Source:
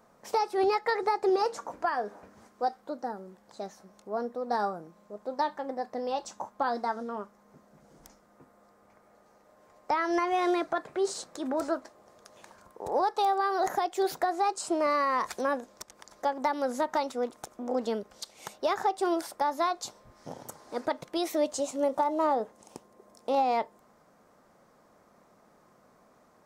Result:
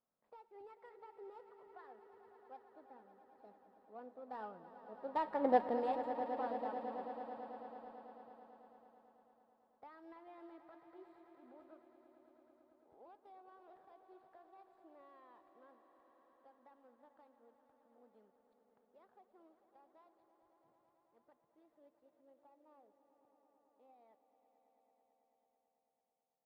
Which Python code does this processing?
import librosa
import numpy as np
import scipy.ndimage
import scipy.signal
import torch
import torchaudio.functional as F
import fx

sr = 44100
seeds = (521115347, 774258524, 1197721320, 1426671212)

y = scipy.signal.medfilt(x, 15)
y = fx.doppler_pass(y, sr, speed_mps=15, closest_m=1.3, pass_at_s=5.53)
y = np.convolve(y, np.full(7, 1.0 / 7))[:len(y)]
y = fx.echo_swell(y, sr, ms=110, loudest=5, wet_db=-14.5)
y = F.gain(torch.from_numpy(y), 5.5).numpy()